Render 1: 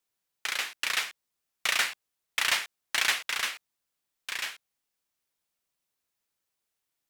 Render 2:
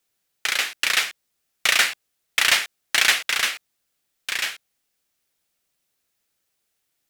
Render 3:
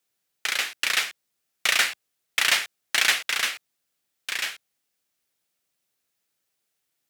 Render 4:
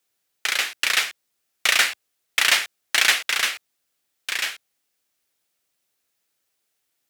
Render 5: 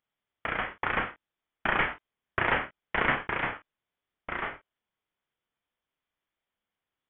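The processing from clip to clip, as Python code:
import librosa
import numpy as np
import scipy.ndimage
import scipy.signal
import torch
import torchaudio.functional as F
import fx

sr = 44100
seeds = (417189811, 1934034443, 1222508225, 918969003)

y1 = fx.peak_eq(x, sr, hz=1000.0, db=-5.5, octaves=0.45)
y1 = F.gain(torch.from_numpy(y1), 8.5).numpy()
y2 = scipy.signal.sosfilt(scipy.signal.butter(2, 83.0, 'highpass', fs=sr, output='sos'), y1)
y2 = F.gain(torch.from_numpy(y2), -3.0).numpy()
y3 = fx.peak_eq(y2, sr, hz=160.0, db=-5.0, octaves=0.81)
y3 = F.gain(torch.from_numpy(y3), 3.0).numpy()
y4 = fx.freq_invert(y3, sr, carrier_hz=3700)
y4 = fx.room_early_taps(y4, sr, ms=(28, 48), db=(-8.5, -12.0))
y4 = F.gain(torch.from_numpy(y4), -7.5).numpy()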